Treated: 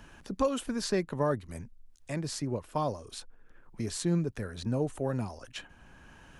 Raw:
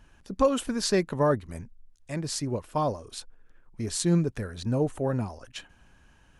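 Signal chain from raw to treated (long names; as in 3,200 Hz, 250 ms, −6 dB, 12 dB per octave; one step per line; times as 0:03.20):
multiband upward and downward compressor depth 40%
level −4 dB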